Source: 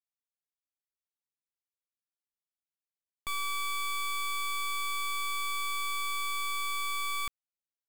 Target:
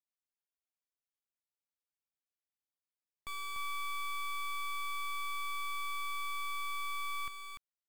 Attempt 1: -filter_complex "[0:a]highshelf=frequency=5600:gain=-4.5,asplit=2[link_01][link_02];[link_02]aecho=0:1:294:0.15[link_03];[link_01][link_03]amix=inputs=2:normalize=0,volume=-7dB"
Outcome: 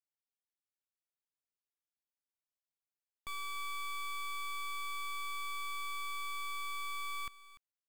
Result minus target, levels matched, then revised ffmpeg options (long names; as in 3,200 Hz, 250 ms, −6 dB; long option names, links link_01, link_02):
echo-to-direct −11 dB
-filter_complex "[0:a]highshelf=frequency=5600:gain=-4.5,asplit=2[link_01][link_02];[link_02]aecho=0:1:294:0.531[link_03];[link_01][link_03]amix=inputs=2:normalize=0,volume=-7dB"